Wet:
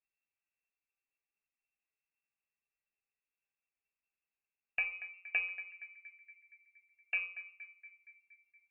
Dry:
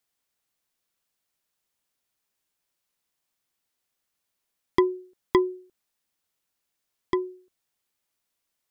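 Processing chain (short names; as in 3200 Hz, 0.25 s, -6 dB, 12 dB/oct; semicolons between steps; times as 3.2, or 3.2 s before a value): octaver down 1 oct, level +4 dB; low shelf 130 Hz +10.5 dB; compressor, threshold -17 dBFS, peak gain reduction 6.5 dB; in parallel at -8.5 dB: sample-and-hold 24×; on the sum: flange 1.1 Hz, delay 9.9 ms, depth 5 ms, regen -57%; resonator 380 Hz, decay 0.43 s, harmonics all, mix 80%; on a send: narrowing echo 0.234 s, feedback 72%, band-pass 540 Hz, level -10 dB; on the sum: inverted band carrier 2700 Hz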